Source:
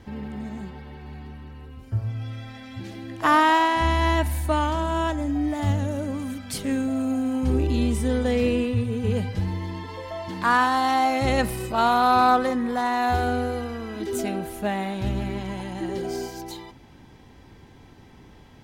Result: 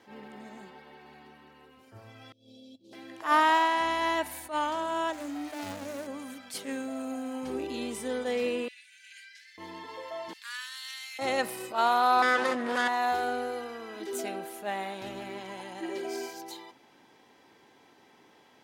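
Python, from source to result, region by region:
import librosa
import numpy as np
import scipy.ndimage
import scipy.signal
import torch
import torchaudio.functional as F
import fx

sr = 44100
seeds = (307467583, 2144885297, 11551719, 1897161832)

y = fx.chain(x, sr, fx.cheby2_bandstop(low_hz=900.0, high_hz=2000.0, order=4, stop_db=50),
    fx.high_shelf(hz=3700.0, db=-10.5),
    fx.over_compress(threshold_db=-40.0, ratio=-0.5), at=(2.32, 2.93))
y = fx.chain(y, sr, fx.median_filter(points=41),
    fx.high_shelf(hz=3100.0, db=10.5),
    fx.hum_notches(base_hz=60, count=8), at=(5.13, 6.07))
y = fx.chain(y, sr, fx.cheby_ripple_highpass(hz=1500.0, ripple_db=6),
    fx.peak_eq(hz=13000.0, db=-5.0, octaves=0.49), at=(8.68, 9.58))
y = fx.chain(y, sr, fx.bessel_highpass(hz=3000.0, order=6),
    fx.clip_hard(threshold_db=-23.5), at=(10.33, 11.19))
y = fx.chain(y, sr, fx.lower_of_two(delay_ms=0.58),
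    fx.lowpass(hz=10000.0, slope=12),
    fx.env_flatten(amount_pct=70), at=(12.22, 12.88))
y = fx.chain(y, sr, fx.peak_eq(hz=2400.0, db=8.0, octaves=0.21),
    fx.comb(ms=3.1, depth=0.43), at=(15.82, 16.33))
y = scipy.signal.sosfilt(scipy.signal.butter(2, 390.0, 'highpass', fs=sr, output='sos'), y)
y = fx.attack_slew(y, sr, db_per_s=210.0)
y = y * librosa.db_to_amplitude(-4.0)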